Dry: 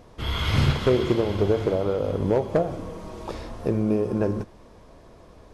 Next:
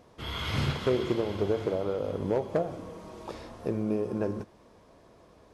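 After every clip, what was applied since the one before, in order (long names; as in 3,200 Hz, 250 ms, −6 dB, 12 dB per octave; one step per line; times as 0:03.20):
high-pass filter 120 Hz 6 dB per octave
level −5.5 dB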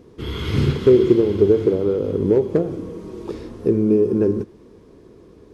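low shelf with overshoot 510 Hz +7.5 dB, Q 3
level +2.5 dB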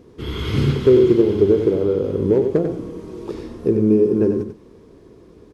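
single-tap delay 93 ms −7.5 dB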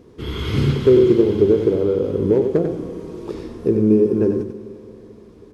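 four-comb reverb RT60 3.3 s, combs from 33 ms, DRR 14 dB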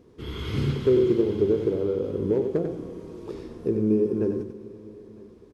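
single-tap delay 958 ms −23.5 dB
level −7.5 dB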